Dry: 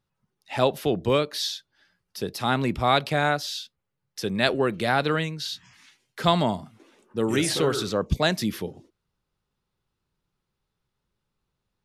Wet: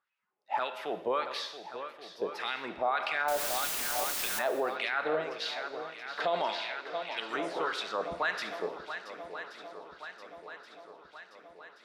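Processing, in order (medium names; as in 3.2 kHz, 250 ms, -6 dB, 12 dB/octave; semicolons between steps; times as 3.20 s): in parallel at 0 dB: compression, threshold -31 dBFS, peak gain reduction 15.5 dB; on the sum: wah-wah 1.7 Hz 570–2500 Hz, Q 2.9; on a send: shuffle delay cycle 1127 ms, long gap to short 1.5:1, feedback 57%, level -13 dB; 3.28–4.39 s: on the sum: word length cut 6-bit, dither triangular; 6.20–7.20 s: frequency weighting D; gated-style reverb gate 400 ms falling, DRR 10 dB; peak limiter -21.5 dBFS, peak gain reduction 9 dB; peaking EQ 110 Hz -12 dB 1.1 oct; trim +1.5 dB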